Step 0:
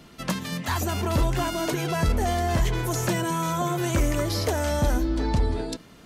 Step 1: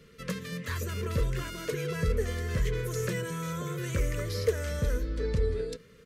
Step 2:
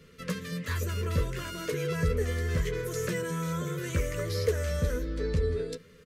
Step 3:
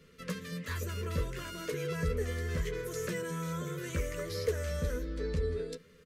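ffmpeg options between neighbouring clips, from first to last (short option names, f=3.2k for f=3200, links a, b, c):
-af "firequalizer=gain_entry='entry(170,0);entry(320,-12);entry(460,11);entry(750,-27);entry(1100,-5);entry(1900,1);entry(3000,-4)':delay=0.05:min_phase=1,volume=-5dB"
-filter_complex "[0:a]asplit=2[a][b];[b]adelay=12,volume=-7dB[c];[a][c]amix=inputs=2:normalize=0"
-af "equalizer=f=110:w=6.2:g=-14,volume=-4dB"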